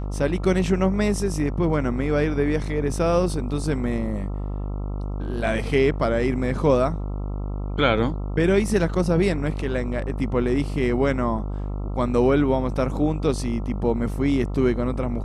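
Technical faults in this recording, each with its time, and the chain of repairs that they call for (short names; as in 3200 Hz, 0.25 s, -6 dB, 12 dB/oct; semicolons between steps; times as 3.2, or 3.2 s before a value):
buzz 50 Hz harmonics 27 -28 dBFS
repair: de-hum 50 Hz, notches 27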